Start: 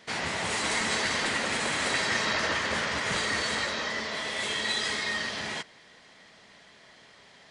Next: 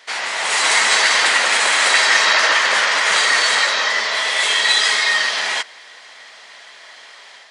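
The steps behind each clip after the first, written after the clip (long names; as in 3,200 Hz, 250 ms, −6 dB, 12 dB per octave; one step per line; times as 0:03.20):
high-pass filter 750 Hz 12 dB per octave
automatic gain control gain up to 6 dB
level +8.5 dB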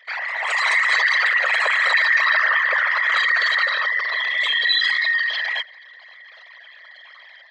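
spectral envelope exaggerated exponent 3
level −3 dB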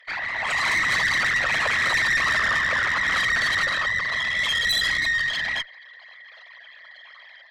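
tube saturation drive 17 dB, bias 0.45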